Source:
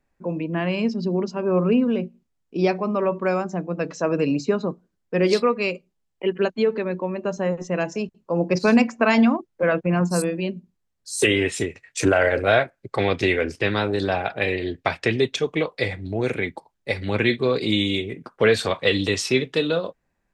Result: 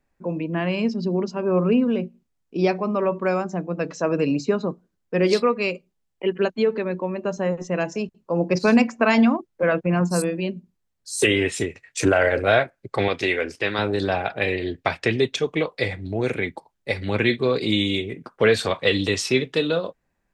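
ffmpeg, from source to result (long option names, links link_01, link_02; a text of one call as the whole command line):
ffmpeg -i in.wav -filter_complex "[0:a]asettb=1/sr,asplit=3[link_01][link_02][link_03];[link_01]atrim=end=13.084[link_04];[link_02]atrim=start=13.08:end=13.79,asetpts=PTS-STARTPTS,afade=type=in:duration=0.004:curve=qsin,afade=type=out:start_time=0.706:duration=0.004:curve=qsin,lowshelf=frequency=250:gain=-10.5[link_05];[link_03]atrim=start=13.786[link_06];[link_04][link_05]acrossfade=duration=0.004:curve1=hsin:curve2=qsin[link_07];[link_07][link_06]acrossfade=duration=0.004:curve1=qsin:curve2=hsin" out.wav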